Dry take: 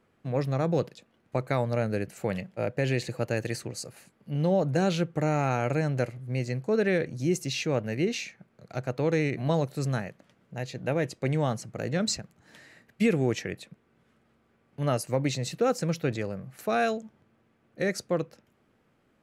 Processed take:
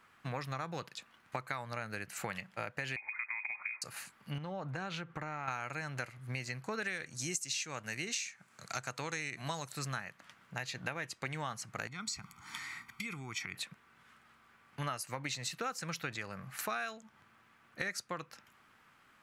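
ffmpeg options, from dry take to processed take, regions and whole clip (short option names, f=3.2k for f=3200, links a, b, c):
-filter_complex "[0:a]asettb=1/sr,asplit=3[a][b][c];[a]atrim=end=2.964[d];[b]atrim=start=2.96:end=3.82,asetpts=PTS-STARTPTS,afade=t=in:d=0.004:c=qsin,afade=t=out:st=0.856:d=0.004:c=qsin,acompressor=threshold=-35dB:ratio=4:attack=3.2:release=140:knee=1:detection=peak,aeval=exprs='val(0)*gte(abs(val(0)),0.00133)':c=same,lowpass=f=2.2k:t=q:w=0.5098,lowpass=f=2.2k:t=q:w=0.6013,lowpass=f=2.2k:t=q:w=0.9,lowpass=f=2.2k:t=q:w=2.563,afreqshift=-2600[e];[c]atrim=start=3.816[f];[d][e]acrossfade=d=0.004:c1=hsin:c2=qsin[g];[g][f]acrossfade=d=0.004:c1=qsin:c2=hsin,asettb=1/sr,asplit=3[h][i][j];[h]atrim=end=4.384[k];[i]atrim=start=4.38:end=5.48,asetpts=PTS-STARTPTS,afade=t=in:d=0.004:c=qsin,afade=t=out:st=1.096:d=0.004:c=qsin,lowpass=f=1.8k:p=1,acompressor=threshold=-34dB:ratio=3:attack=3.2:release=140:knee=1:detection=peak[l];[j]atrim=start=5.476[m];[k][l]acrossfade=d=0.004:c1=hsin:c2=qsin[n];[n][m]acrossfade=d=0.004:c1=qsin:c2=hsin,asettb=1/sr,asplit=3[o][p][q];[o]atrim=end=6.824[r];[p]atrim=start=6.82:end=9.73,asetpts=PTS-STARTPTS,afade=t=in:d=0.004:c=qsin,afade=t=out:st=2.906:d=0.004:c=qsin,highpass=59,equalizer=f=7.7k:t=o:w=1.1:g=14[s];[q]atrim=start=9.726[t];[r][s]acrossfade=d=0.004:c1=hsin:c2=qsin[u];[u][t]acrossfade=d=0.004:c1=qsin:c2=hsin,asettb=1/sr,asplit=3[v][w][x];[v]atrim=end=11.874[y];[w]atrim=start=11.87:end=13.55,asetpts=PTS-STARTPTS,afade=t=in:d=0.004:c=qsin,afade=t=out:st=1.676:d=0.004:c=qsin,aecho=1:1:0.9:0.94,atrim=end_sample=74088,acompressor=threshold=-37dB:ratio=8:attack=3.2:release=140:knee=1:detection=peak[z];[x]atrim=start=13.546[aa];[y][z]acrossfade=d=0.004:c1=hsin:c2=qsin[ab];[ab][aa]acrossfade=d=0.004:c1=qsin:c2=hsin,lowshelf=f=760:t=q:w=1.5:g=-12.5,acompressor=threshold=-44dB:ratio=6,volume=8dB"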